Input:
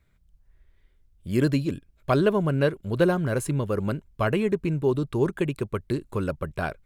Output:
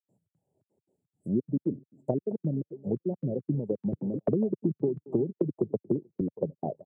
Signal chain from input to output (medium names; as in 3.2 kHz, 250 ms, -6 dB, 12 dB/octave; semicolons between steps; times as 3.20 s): Chebyshev band-stop 860–7300 Hz, order 5; compression 8:1, threshold -25 dBFS, peak gain reduction 9.5 dB; low-pass that closes with the level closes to 330 Hz, closed at -25.5 dBFS; peaking EQ 1.3 kHz -4.5 dB 2 oct; feedback delay 217 ms, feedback 31%, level -13.5 dB; trance gate ".xx.xxx.x" 172 bpm -60 dB; reverb removal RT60 1.3 s; Bessel high-pass 220 Hz, order 8; distance through air 74 m; 3.93–6.21 s: three bands compressed up and down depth 100%; trim +8.5 dB